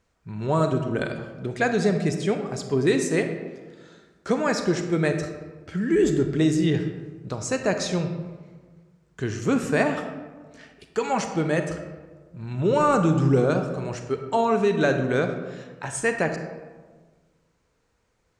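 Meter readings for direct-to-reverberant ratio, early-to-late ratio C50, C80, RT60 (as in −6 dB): 6.5 dB, 7.5 dB, 9.0 dB, 1.4 s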